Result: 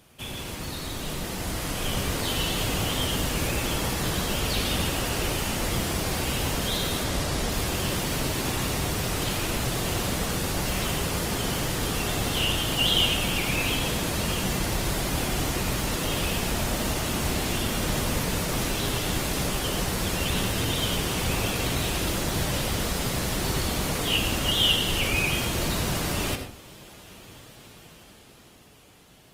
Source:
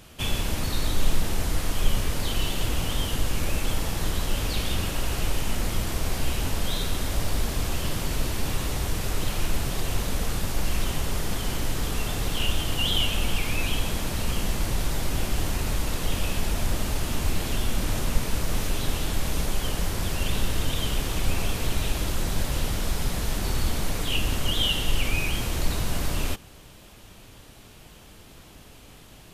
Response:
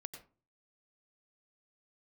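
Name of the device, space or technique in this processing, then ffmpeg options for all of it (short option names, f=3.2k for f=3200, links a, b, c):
far-field microphone of a smart speaker: -filter_complex "[0:a]asettb=1/sr,asplit=3[a][b][c];[a]atrim=end=7.044[d];[b]atrim=start=7.04:end=7.5,asetpts=PTS-STARTPTS,afade=t=in:d=0.004:c=qsin,afade=t=out:st=0.456:d=0.004:c=qsin,lowpass=11k[e];[c]atrim=start=7.496[f];[d][e]acrossfade=d=0.004:c1=hsin:c2=qsin[g];[g][f]acrossfade=d=0.004:c1=qsin:c2=hsin[h];[1:a]atrim=start_sample=2205[i];[h][i]afir=irnorm=-1:irlink=0,highpass=f=120:p=1,dynaudnorm=f=150:g=21:m=8dB" -ar 48000 -c:a libopus -b:a 24k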